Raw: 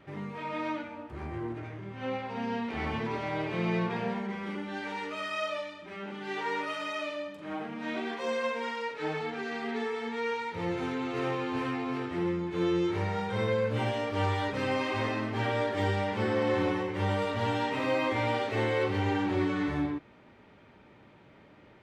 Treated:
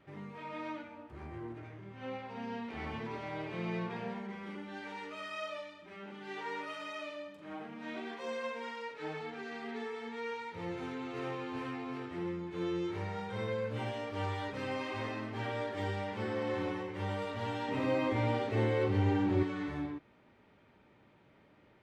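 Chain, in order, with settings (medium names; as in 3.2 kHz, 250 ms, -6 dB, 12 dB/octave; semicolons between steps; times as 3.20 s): 17.68–19.43 s: bass shelf 470 Hz +10 dB; trim -7.5 dB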